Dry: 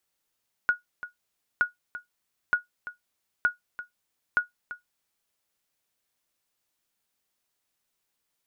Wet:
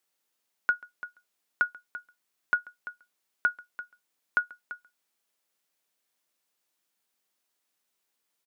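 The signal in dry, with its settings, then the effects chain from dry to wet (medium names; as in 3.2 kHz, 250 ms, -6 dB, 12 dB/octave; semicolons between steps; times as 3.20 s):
sonar ping 1.45 kHz, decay 0.14 s, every 0.92 s, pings 5, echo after 0.34 s, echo -14.5 dB -13.5 dBFS
high-pass 190 Hz 12 dB/octave; delay 137 ms -23 dB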